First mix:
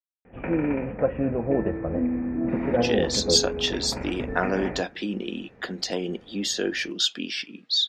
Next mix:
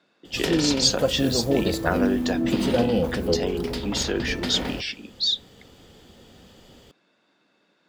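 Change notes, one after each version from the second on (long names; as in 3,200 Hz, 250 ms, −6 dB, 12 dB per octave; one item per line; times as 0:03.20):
speech: entry −2.50 s
background: remove Chebyshev low-pass with heavy ripple 2,500 Hz, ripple 3 dB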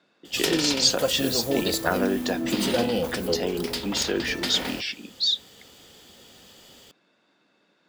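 background: add spectral tilt +2.5 dB per octave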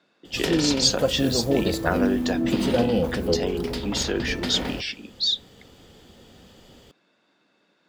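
background: add spectral tilt −2.5 dB per octave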